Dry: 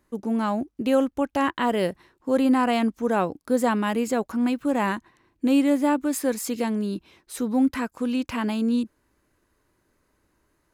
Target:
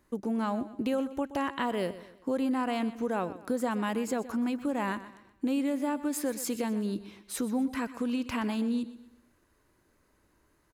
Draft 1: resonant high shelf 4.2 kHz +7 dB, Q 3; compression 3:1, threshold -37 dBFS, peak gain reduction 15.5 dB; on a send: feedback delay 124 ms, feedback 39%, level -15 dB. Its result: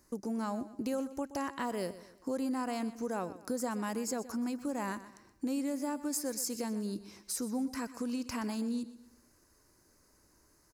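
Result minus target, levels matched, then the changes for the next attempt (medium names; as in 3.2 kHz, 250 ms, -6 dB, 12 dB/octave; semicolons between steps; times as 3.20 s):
8 kHz band +6.5 dB; compression: peak gain reduction +5 dB
change: compression 3:1, threshold -29.5 dBFS, peak gain reduction 10.5 dB; remove: resonant high shelf 4.2 kHz +7 dB, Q 3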